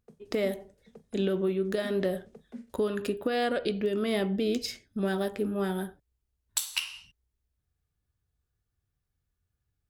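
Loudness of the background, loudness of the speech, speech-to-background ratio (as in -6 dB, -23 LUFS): -49.5 LUFS, -30.5 LUFS, 19.0 dB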